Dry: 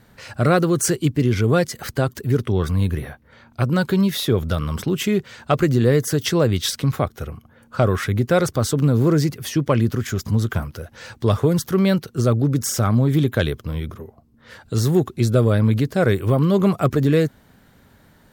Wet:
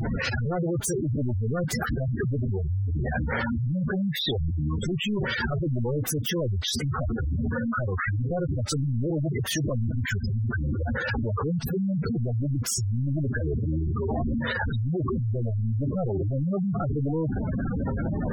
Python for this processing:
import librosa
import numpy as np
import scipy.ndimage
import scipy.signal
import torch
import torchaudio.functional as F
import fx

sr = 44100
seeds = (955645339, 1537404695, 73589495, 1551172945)

y = np.sign(x) * np.sqrt(np.mean(np.square(x)))
y = fx.dispersion(y, sr, late='highs', ms=49.0, hz=2400.0)
y = fx.spec_gate(y, sr, threshold_db=-10, keep='strong')
y = y * librosa.db_to_amplitude(-4.5)